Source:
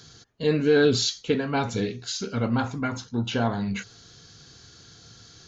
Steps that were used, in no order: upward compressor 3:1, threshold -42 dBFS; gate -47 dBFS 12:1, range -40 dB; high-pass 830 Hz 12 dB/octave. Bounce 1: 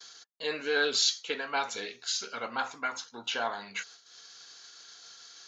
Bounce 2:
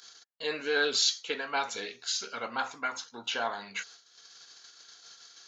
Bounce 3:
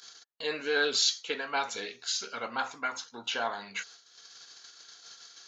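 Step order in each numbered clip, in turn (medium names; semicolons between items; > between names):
upward compressor > gate > high-pass; gate > upward compressor > high-pass; gate > high-pass > upward compressor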